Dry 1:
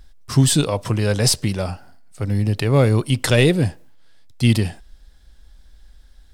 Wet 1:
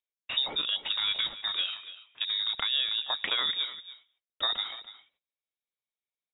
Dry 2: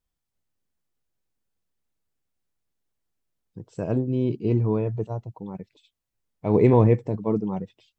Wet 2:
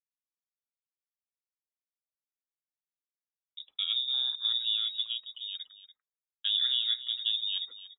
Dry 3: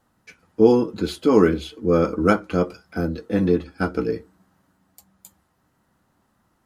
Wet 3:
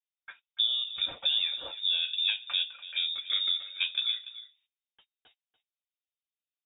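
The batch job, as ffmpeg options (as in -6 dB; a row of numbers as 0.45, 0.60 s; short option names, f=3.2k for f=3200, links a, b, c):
-af "highpass=250,agate=range=-35dB:threshold=-51dB:ratio=16:detection=peak,acompressor=threshold=-26dB:ratio=6,aecho=1:1:289:0.178,lowpass=f=3.3k:t=q:w=0.5098,lowpass=f=3.3k:t=q:w=0.6013,lowpass=f=3.3k:t=q:w=0.9,lowpass=f=3.3k:t=q:w=2.563,afreqshift=-3900"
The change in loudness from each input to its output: -10.0, -5.5, -7.0 LU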